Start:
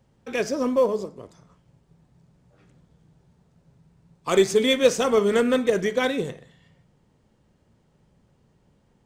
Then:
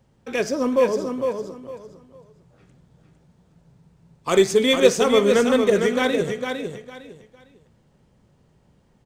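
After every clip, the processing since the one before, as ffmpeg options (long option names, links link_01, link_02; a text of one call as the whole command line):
ffmpeg -i in.wav -af "aecho=1:1:455|910|1365:0.501|0.12|0.0289,volume=2dB" out.wav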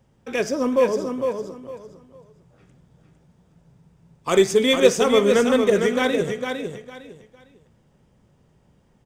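ffmpeg -i in.wav -af "bandreject=frequency=4200:width=10" out.wav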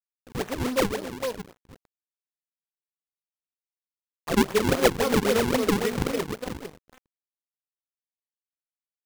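ffmpeg -i in.wav -af "acrusher=samples=41:mix=1:aa=0.000001:lfo=1:lforange=65.6:lforate=3.7,aeval=exprs='sgn(val(0))*max(abs(val(0))-0.0211,0)':channel_layout=same,volume=-4.5dB" out.wav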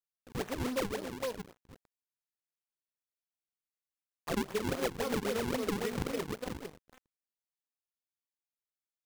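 ffmpeg -i in.wav -af "acompressor=threshold=-24dB:ratio=6,volume=-5.5dB" out.wav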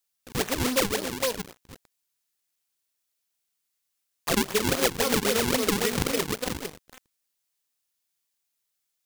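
ffmpeg -i in.wav -af "highshelf=frequency=2300:gain=10,volume=7dB" out.wav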